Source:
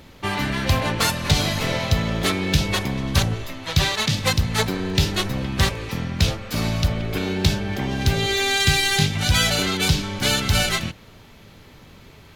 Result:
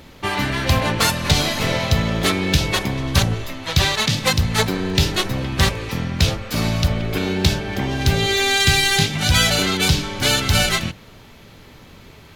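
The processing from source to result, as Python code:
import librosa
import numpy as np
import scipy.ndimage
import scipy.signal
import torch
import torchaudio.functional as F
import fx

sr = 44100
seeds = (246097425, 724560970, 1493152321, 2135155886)

y = fx.hum_notches(x, sr, base_hz=50, count=4)
y = F.gain(torch.from_numpy(y), 3.0).numpy()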